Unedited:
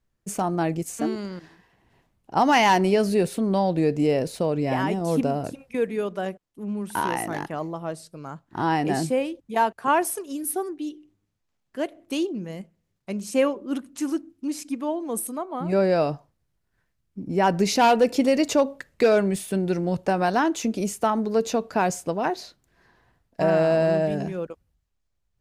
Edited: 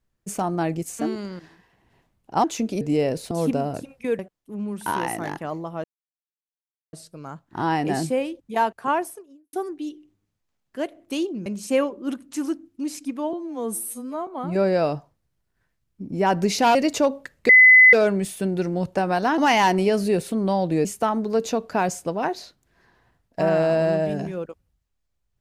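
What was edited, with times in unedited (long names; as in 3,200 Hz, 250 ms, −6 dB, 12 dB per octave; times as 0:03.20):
0:02.44–0:03.91: swap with 0:20.49–0:20.86
0:04.41–0:05.01: remove
0:05.89–0:06.28: remove
0:07.93: splice in silence 1.09 s
0:09.72–0:10.53: fade out and dull
0:12.46–0:13.10: remove
0:14.97–0:15.44: time-stretch 2×
0:17.92–0:18.30: remove
0:19.04: insert tone 2,020 Hz −7.5 dBFS 0.44 s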